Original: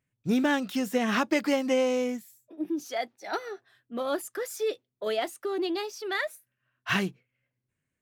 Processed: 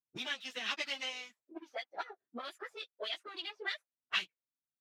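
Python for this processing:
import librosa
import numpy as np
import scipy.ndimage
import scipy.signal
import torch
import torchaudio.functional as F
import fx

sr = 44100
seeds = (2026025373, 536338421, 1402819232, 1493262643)

y = fx.power_curve(x, sr, exponent=1.4)
y = fx.auto_wah(y, sr, base_hz=230.0, top_hz=3400.0, q=2.3, full_db=-31.0, direction='up')
y = fx.stretch_vocoder_free(y, sr, factor=0.6)
y = F.gain(torch.from_numpy(y), 9.0).numpy()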